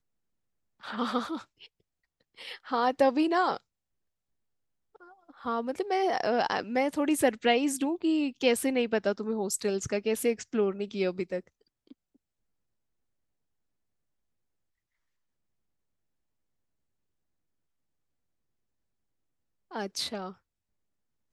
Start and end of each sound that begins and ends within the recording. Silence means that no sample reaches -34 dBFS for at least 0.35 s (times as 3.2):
0.84–1.38
2.45–3.57
5.46–11.39
19.75–20.3